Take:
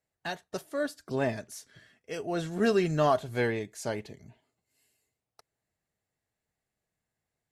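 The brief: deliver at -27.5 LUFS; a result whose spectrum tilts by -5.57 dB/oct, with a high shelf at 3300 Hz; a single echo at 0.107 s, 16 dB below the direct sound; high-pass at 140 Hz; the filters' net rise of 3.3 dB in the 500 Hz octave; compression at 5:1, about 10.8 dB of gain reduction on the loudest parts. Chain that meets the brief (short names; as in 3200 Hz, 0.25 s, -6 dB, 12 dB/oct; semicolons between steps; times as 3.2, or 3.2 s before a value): HPF 140 Hz; bell 500 Hz +4.5 dB; high shelf 3300 Hz -8 dB; compressor 5:1, threshold -30 dBFS; echo 0.107 s -16 dB; gain +8.5 dB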